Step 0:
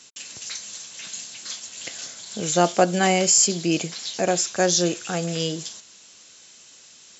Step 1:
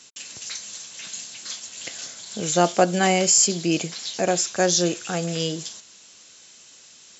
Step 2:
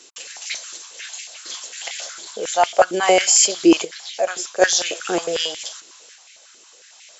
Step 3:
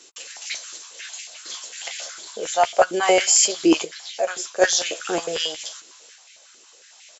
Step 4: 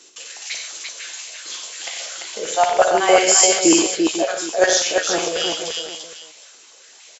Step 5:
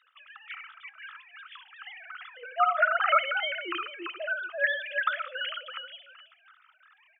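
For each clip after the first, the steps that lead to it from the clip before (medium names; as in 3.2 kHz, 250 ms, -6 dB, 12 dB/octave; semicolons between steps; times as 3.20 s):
no audible change
dynamic bell 3.2 kHz, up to +5 dB, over -46 dBFS, Q 6.4; random-step tremolo 1.3 Hz; step-sequenced high-pass 11 Hz 360–2200 Hz; trim +2.5 dB
doubling 13 ms -10 dB; trim -2.5 dB
multi-tap echo 58/93/134/342/498/765 ms -7.5/-8/-11/-4/-11/-17 dB; trim +1 dB
formants replaced by sine waves; resonant high-pass 1.3 kHz, resonance Q 11; on a send at -22 dB: reverberation RT60 0.65 s, pre-delay 19 ms; on the sum: trim -7.5 dB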